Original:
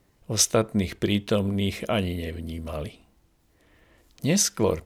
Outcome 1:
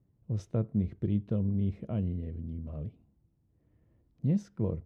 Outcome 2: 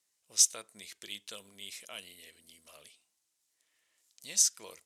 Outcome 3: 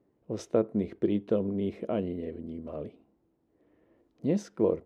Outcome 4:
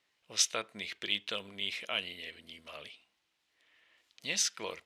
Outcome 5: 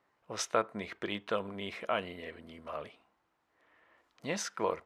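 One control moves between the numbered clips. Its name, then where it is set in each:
band-pass, frequency: 120, 7900, 350, 3000, 1200 Hz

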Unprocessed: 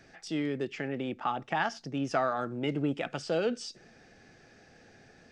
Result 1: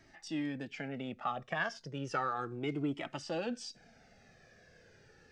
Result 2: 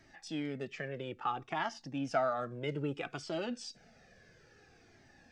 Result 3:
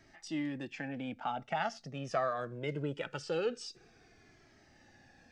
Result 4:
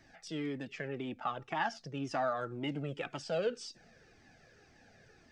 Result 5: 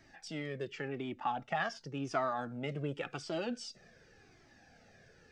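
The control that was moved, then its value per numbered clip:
cascading flanger, rate: 0.33, 0.6, 0.22, 1.9, 0.9 Hz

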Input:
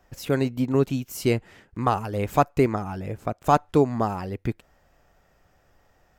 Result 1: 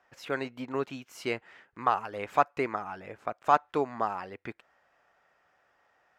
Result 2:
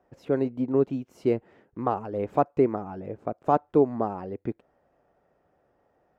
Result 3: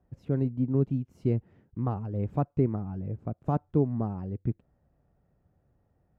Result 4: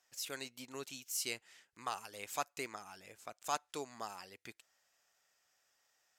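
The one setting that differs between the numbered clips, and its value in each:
band-pass, frequency: 1500, 430, 130, 7400 Hz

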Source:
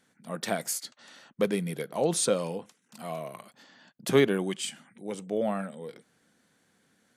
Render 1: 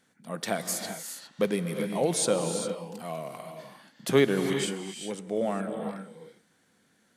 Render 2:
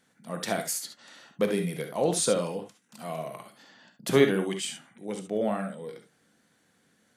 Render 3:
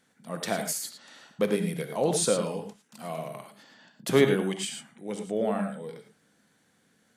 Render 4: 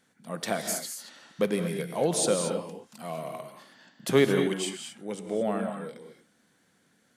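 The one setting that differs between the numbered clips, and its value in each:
non-linear reverb, gate: 430, 90, 130, 250 ms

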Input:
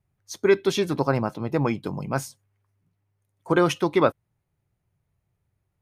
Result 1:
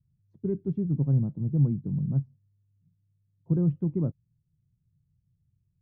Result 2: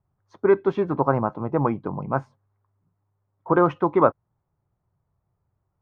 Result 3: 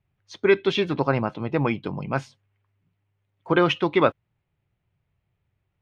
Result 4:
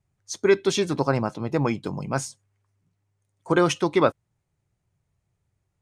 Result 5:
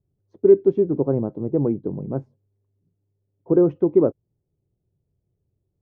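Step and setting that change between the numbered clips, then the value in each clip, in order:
synth low-pass, frequency: 160, 1100, 3000, 7800, 410 Hz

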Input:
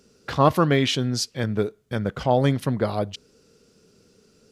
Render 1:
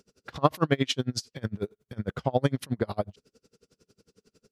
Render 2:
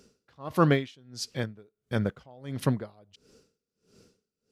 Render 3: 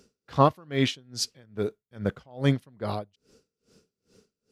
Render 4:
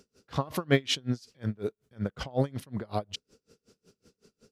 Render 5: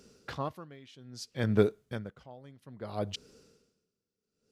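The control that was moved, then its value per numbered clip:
dB-linear tremolo, rate: 11, 1.5, 2.4, 5.4, 0.61 Hz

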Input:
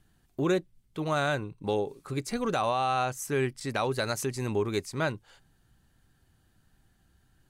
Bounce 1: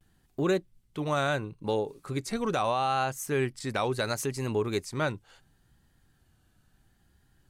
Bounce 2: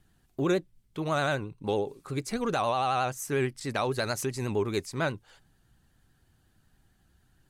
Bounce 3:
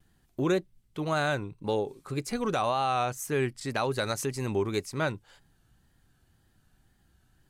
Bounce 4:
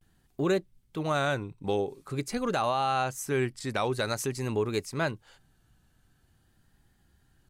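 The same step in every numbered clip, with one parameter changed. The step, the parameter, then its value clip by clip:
vibrato, rate: 0.73, 11, 1.9, 0.47 Hz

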